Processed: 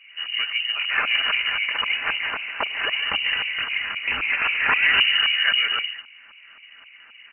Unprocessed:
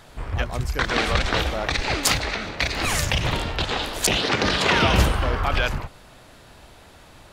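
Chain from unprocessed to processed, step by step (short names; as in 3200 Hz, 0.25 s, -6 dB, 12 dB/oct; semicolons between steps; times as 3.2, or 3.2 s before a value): comb 5.3 ms, depth 32%; outdoor echo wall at 25 m, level -6 dB; LFO low-pass saw up 3.8 Hz 550–1700 Hz; inverted band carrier 2900 Hz; gain -3 dB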